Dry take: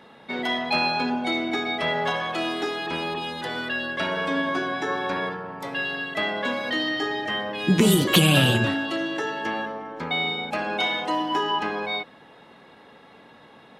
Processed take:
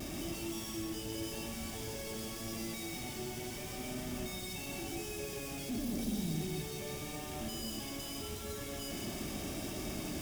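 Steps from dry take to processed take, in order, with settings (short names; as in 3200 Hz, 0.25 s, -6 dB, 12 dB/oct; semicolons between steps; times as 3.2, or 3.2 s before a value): infinite clipping; passive tone stack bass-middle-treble 10-0-1; notch 3100 Hz, Q 5.2; notch comb 360 Hz; vibrato 0.64 Hz 23 cents; in parallel at -5.5 dB: wrapped overs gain 54 dB; on the sum: speed mistake 33 rpm record played at 45 rpm; on a send at -2 dB: reverb RT60 0.90 s, pre-delay 0.112 s; on the sum: gain +6 dB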